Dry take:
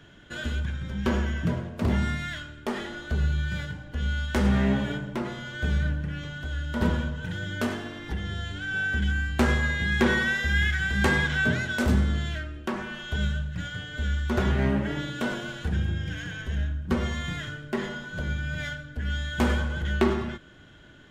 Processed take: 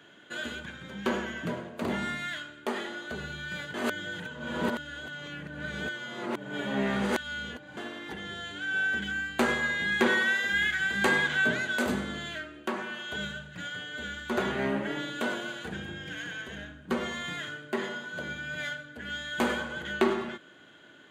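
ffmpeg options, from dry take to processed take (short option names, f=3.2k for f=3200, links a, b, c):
-filter_complex "[0:a]asettb=1/sr,asplit=3[a][b][c];[a]atrim=end=10.084[d];[b]atrim=start=10.08:end=10.53,asetpts=PTS-STARTPTS,afade=t=in:d=0.004:c=qsin,afade=t=out:st=0.446:d=0.004:c=qsin,highpass=f=190:p=1[e];[c]atrim=start=10.526[f];[d][e]acrossfade=d=0.004:c1=hsin:c2=qsin[g];[g][f]acrossfade=d=0.004:c1=qsin:c2=hsin,asplit=3[h][i][j];[h]atrim=end=3.742[k];[i]atrim=start=3.738:end=7.772,asetpts=PTS-STARTPTS,areverse[l];[j]atrim=start=7.768[m];[k][l]acrossfade=d=0.004:c1=hsin:c2=hsin[n];[n][m]acrossfade=d=0.004:c1=hsin:c2=hsin,highpass=280,bandreject=f=5.4k:w=5.7"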